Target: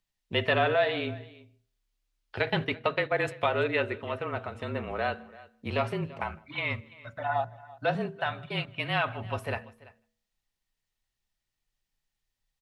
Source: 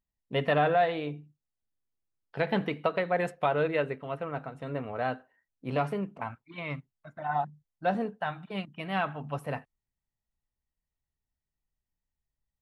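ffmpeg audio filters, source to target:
-filter_complex "[0:a]asplit=2[a][b];[b]acompressor=threshold=-36dB:ratio=6,volume=1dB[c];[a][c]amix=inputs=2:normalize=0,asettb=1/sr,asplit=3[d][e][f];[d]atrim=end=2.394[g];[e]atrim=start=2.39:end=3.27,asetpts=PTS-STARTPTS,afade=t=in:d=0.004:c=qsin,afade=t=out:st=0.876:d=0.004:c=qsin,agate=range=-9dB:threshold=-28dB:ratio=16:detection=peak[h];[f]atrim=start=3.266[i];[g][h]acrossfade=d=0.004:c1=hsin:c2=qsin[j];[j][i]acrossfade=d=0.004:c1=qsin:c2=hsin,equalizer=f=3.5k:w=0.55:g=8.5,bandreject=f=86.04:t=h:w=4,bandreject=f=172.08:t=h:w=4,bandreject=f=258.12:t=h:w=4,bandreject=f=344.16:t=h:w=4,bandreject=f=430.2:t=h:w=4,bandreject=f=516.24:t=h:w=4,bandreject=f=602.28:t=h:w=4,bandreject=f=688.32:t=h:w=4,asplit=2[k][l];[l]aecho=0:1:337:0.0944[m];[k][m]amix=inputs=2:normalize=0,afreqshift=-34,asplit=2[n][o];[o]adelay=157.4,volume=-26dB,highshelf=f=4k:g=-3.54[p];[n][p]amix=inputs=2:normalize=0,volume=-3.5dB"

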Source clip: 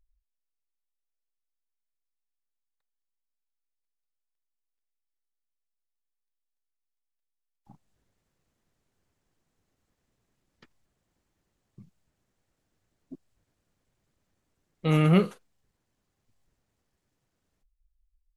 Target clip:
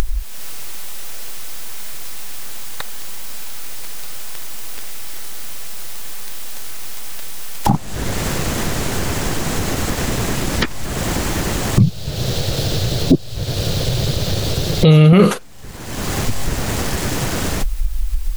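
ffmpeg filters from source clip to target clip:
-filter_complex "[0:a]asettb=1/sr,asplit=3[a][b][c];[a]atrim=end=11.804[d];[b]atrim=start=11.8:end=15.13,asetpts=PTS-STARTPTS,afade=t=in:d=0.004:c=qsin,afade=t=out:st=3.326:d=0.004:c=qsin,equalizer=f=125:t=o:w=1:g=9,equalizer=f=250:t=o:w=1:g=-8,equalizer=f=500:t=o:w=1:g=6,equalizer=f=1k:t=o:w=1:g=-7,equalizer=f=2k:t=o:w=1:g=-7,equalizer=f=4k:t=o:w=1:g=11,equalizer=f=8k:t=o:w=1:g=-6[e];[c]atrim=start=15.126[f];[d][e]acrossfade=d=0.004:c1=hsin:c2=qsin[g];[g][f]acrossfade=d=0.004:c1=qsin:c2=hsin,acompressor=mode=upward:threshold=-23dB:ratio=2.5,alimiter=level_in=29dB:limit=-1dB:release=50:level=0:latency=1,volume=-1dB"

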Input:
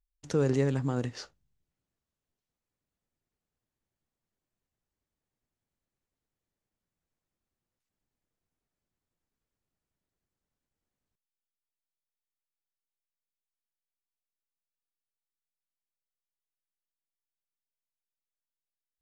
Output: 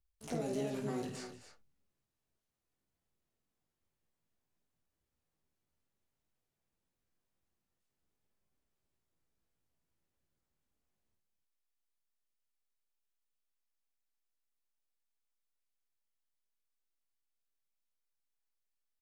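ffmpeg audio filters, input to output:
-filter_complex "[0:a]flanger=delay=18:depth=4.8:speed=0.21,asplit=2[a][b];[b]asetrate=66075,aresample=44100,atempo=0.66742,volume=-2dB[c];[a][c]amix=inputs=2:normalize=0,acrossover=split=580|3300[d][e][f];[d]acompressor=threshold=-38dB:ratio=4[g];[e]acompressor=threshold=-50dB:ratio=4[h];[f]acompressor=threshold=-52dB:ratio=4[i];[g][h][i]amix=inputs=3:normalize=0,asplit=2[j][k];[k]aecho=0:1:51|188|264|291:0.447|0.15|0.224|0.2[l];[j][l]amix=inputs=2:normalize=0"

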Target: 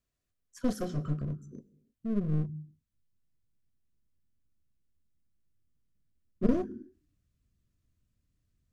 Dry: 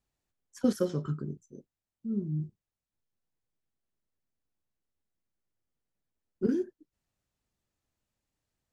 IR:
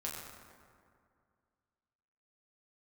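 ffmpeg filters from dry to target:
-filter_complex "[0:a]asplit=2[a][b];[1:a]atrim=start_sample=2205,afade=t=out:st=0.41:d=0.01,atrim=end_sample=18522,asetrate=48510,aresample=44100[c];[b][c]afir=irnorm=-1:irlink=0,volume=-13.5dB[d];[a][d]amix=inputs=2:normalize=0,asubboost=boost=5.5:cutoff=240,aeval=exprs='clip(val(0),-1,0.0251)':c=same,asuperstop=centerf=850:order=20:qfactor=4.4,volume=-2.5dB"

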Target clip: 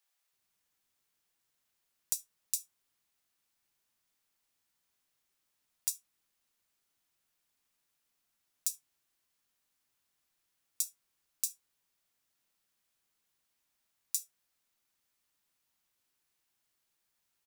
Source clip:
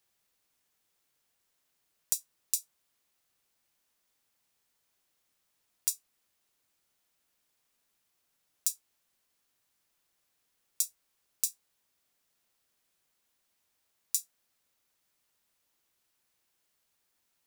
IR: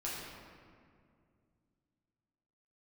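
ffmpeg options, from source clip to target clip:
-filter_complex "[0:a]acrossover=split=510[a][b];[a]adelay=330[c];[c][b]amix=inputs=2:normalize=0,asplit=2[d][e];[1:a]atrim=start_sample=2205,atrim=end_sample=3528[f];[e][f]afir=irnorm=-1:irlink=0,volume=-12.5dB[g];[d][g]amix=inputs=2:normalize=0,volume=-4.5dB"

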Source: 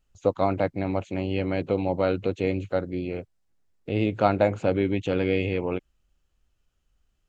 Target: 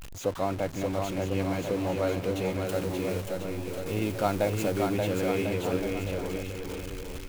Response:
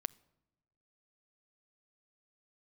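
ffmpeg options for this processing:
-filter_complex "[0:a]aeval=exprs='val(0)+0.5*0.0376*sgn(val(0))':c=same,asettb=1/sr,asplit=3[a][b][c];[a]atrim=end=2.664[d];[b]atrim=start=2.66:end=4.87,asetpts=PTS-STARTPTS,afade=t=in:d=0.004:c=qsin,afade=t=out:st=2.206:d=0.004:c=qsin,highshelf=f=5.7k:g=9.5[e];[c]atrim=start=4.866[f];[d][e]acrossfade=d=0.004:c1=hsin:c2=qsin[g];[g][f]acrossfade=d=0.004:c1=qsin:c2=hsin,aecho=1:1:580|1044|1415|1712|1950:0.631|0.398|0.251|0.158|0.1,volume=-7dB"

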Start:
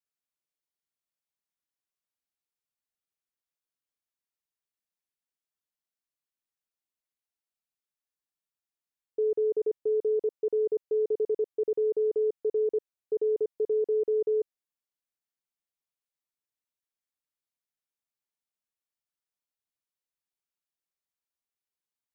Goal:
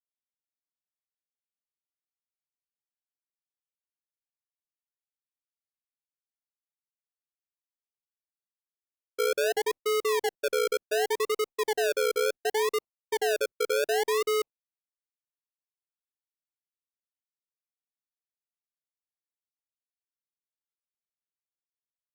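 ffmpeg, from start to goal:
-af "agate=range=-33dB:threshold=-29dB:ratio=3:detection=peak,acrusher=samples=37:mix=1:aa=0.000001:lfo=1:lforange=22.2:lforate=0.68" -ar 48000 -c:a libopus -b:a 256k

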